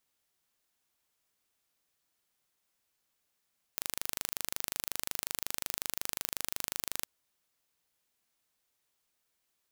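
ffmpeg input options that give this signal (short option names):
-f lavfi -i "aevalsrc='0.501*eq(mod(n,1729),0)':d=3.27:s=44100"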